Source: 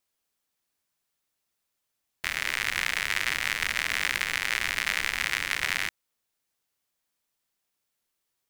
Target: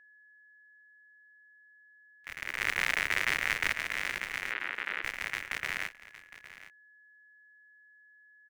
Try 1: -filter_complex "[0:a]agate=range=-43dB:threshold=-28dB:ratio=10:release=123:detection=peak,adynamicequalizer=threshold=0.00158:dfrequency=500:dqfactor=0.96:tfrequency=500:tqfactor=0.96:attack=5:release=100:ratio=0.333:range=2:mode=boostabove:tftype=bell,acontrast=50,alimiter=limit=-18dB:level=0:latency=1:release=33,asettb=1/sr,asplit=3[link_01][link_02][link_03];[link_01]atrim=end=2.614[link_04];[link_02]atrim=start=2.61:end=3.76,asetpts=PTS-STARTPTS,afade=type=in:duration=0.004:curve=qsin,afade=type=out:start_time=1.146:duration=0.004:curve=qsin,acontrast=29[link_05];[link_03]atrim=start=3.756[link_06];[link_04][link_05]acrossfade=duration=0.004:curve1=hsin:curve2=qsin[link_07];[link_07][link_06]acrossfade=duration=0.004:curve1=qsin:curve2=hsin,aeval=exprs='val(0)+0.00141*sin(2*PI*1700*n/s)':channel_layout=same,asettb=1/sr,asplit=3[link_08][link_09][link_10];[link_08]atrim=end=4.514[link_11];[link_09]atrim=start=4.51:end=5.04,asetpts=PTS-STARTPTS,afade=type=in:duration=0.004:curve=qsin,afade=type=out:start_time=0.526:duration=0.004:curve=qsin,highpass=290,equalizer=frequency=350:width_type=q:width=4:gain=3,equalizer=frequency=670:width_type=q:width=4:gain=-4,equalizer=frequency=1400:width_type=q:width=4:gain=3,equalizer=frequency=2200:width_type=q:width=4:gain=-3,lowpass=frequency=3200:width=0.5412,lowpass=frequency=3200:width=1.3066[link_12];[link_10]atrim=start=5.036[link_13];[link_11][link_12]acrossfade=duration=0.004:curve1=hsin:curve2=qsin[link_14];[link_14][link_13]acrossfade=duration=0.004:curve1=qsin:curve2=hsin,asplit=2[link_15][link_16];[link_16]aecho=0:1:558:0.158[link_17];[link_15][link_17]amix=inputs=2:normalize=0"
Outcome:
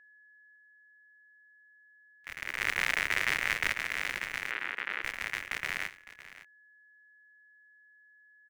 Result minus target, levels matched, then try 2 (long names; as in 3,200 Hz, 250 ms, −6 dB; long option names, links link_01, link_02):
echo 253 ms early
-filter_complex "[0:a]agate=range=-43dB:threshold=-28dB:ratio=10:release=123:detection=peak,adynamicequalizer=threshold=0.00158:dfrequency=500:dqfactor=0.96:tfrequency=500:tqfactor=0.96:attack=5:release=100:ratio=0.333:range=2:mode=boostabove:tftype=bell,acontrast=50,alimiter=limit=-18dB:level=0:latency=1:release=33,asettb=1/sr,asplit=3[link_01][link_02][link_03];[link_01]atrim=end=2.614[link_04];[link_02]atrim=start=2.61:end=3.76,asetpts=PTS-STARTPTS,afade=type=in:duration=0.004:curve=qsin,afade=type=out:start_time=1.146:duration=0.004:curve=qsin,acontrast=29[link_05];[link_03]atrim=start=3.756[link_06];[link_04][link_05]acrossfade=duration=0.004:curve1=hsin:curve2=qsin[link_07];[link_07][link_06]acrossfade=duration=0.004:curve1=qsin:curve2=hsin,aeval=exprs='val(0)+0.00141*sin(2*PI*1700*n/s)':channel_layout=same,asettb=1/sr,asplit=3[link_08][link_09][link_10];[link_08]atrim=end=4.514[link_11];[link_09]atrim=start=4.51:end=5.04,asetpts=PTS-STARTPTS,afade=type=in:duration=0.004:curve=qsin,afade=type=out:start_time=0.526:duration=0.004:curve=qsin,highpass=290,equalizer=frequency=350:width_type=q:width=4:gain=3,equalizer=frequency=670:width_type=q:width=4:gain=-4,equalizer=frequency=1400:width_type=q:width=4:gain=3,equalizer=frequency=2200:width_type=q:width=4:gain=-3,lowpass=frequency=3200:width=0.5412,lowpass=frequency=3200:width=1.3066[link_12];[link_10]atrim=start=5.036[link_13];[link_11][link_12]acrossfade=duration=0.004:curve1=hsin:curve2=qsin[link_14];[link_14][link_13]acrossfade=duration=0.004:curve1=qsin:curve2=hsin,asplit=2[link_15][link_16];[link_16]aecho=0:1:811:0.158[link_17];[link_15][link_17]amix=inputs=2:normalize=0"